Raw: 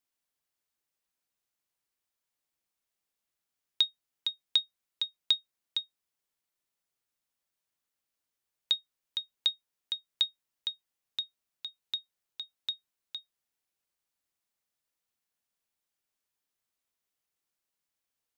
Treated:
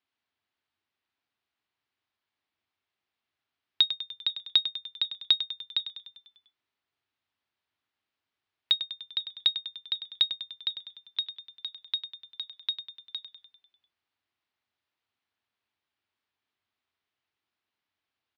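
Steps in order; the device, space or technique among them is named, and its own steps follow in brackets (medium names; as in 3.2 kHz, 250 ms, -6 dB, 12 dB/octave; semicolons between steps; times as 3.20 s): frequency-shifting delay pedal into a guitar cabinet (frequency-shifting echo 99 ms, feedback 58%, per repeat -39 Hz, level -11 dB; cabinet simulation 86–4000 Hz, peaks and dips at 93 Hz +6 dB, 170 Hz -9 dB, 520 Hz -8 dB); trim +5.5 dB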